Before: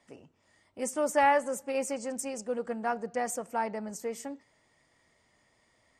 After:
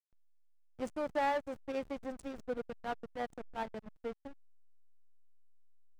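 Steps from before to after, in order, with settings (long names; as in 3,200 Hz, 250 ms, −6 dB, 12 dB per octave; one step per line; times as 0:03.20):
0:02.67–0:04.02: transient designer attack −7 dB, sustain −11 dB
high-frequency loss of the air 68 metres
0:00.94–0:01.96: downward compressor 1.5 to 1, threshold −33 dBFS, peak gain reduction 5 dB
slack as between gear wheels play −30 dBFS
level −2.5 dB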